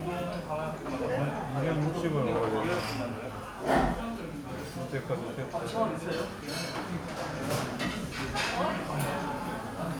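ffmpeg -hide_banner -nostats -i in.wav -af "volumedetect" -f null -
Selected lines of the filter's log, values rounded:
mean_volume: -32.3 dB
max_volume: -14.2 dB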